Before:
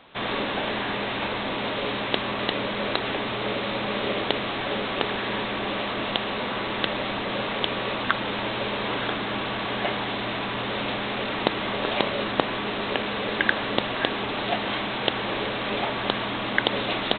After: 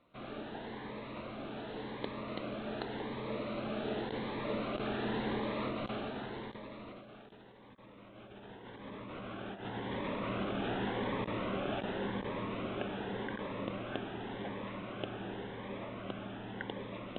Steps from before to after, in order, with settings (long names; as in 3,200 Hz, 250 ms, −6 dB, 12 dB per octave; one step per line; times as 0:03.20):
source passing by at 0:07.68, 16 m/s, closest 11 metres
feedback delay with all-pass diffusion 1,512 ms, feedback 53%, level −12 dB
in parallel at −6 dB: hard clipping −19.5 dBFS, distortion −13 dB
on the sum: compressor whose output falls as the input rises −36 dBFS, ratio −0.5
low-pass filter 1,000 Hz 6 dB per octave
phaser whose notches keep moving one way rising 0.88 Hz
level +1.5 dB